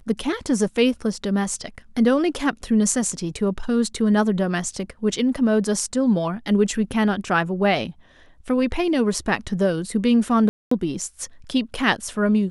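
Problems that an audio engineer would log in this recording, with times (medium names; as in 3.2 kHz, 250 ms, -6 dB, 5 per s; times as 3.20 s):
10.49–10.71 s: dropout 224 ms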